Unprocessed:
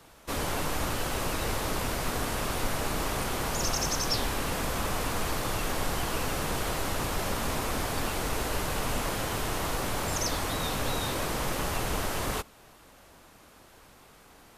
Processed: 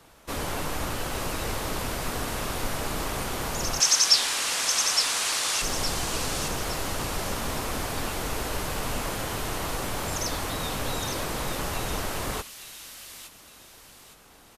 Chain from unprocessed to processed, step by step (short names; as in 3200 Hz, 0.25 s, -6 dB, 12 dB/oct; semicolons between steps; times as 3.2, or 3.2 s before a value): 3.8–5.62 weighting filter ITU-R 468; downsampling 32000 Hz; thin delay 0.863 s, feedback 37%, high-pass 2900 Hz, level -5.5 dB